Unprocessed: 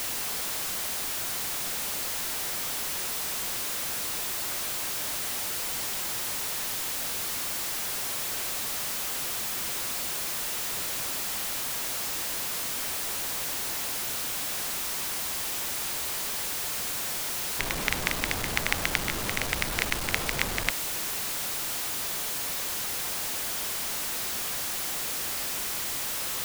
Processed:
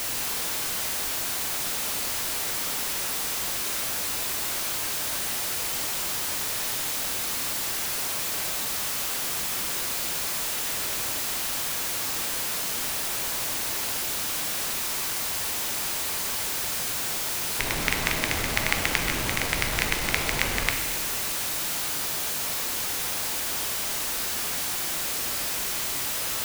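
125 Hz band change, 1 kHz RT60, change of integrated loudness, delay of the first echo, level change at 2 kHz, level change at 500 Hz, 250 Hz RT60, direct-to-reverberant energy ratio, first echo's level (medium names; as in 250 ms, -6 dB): +3.5 dB, 1.5 s, +3.0 dB, no echo, +3.0 dB, +3.0 dB, 1.5 s, 3.5 dB, no echo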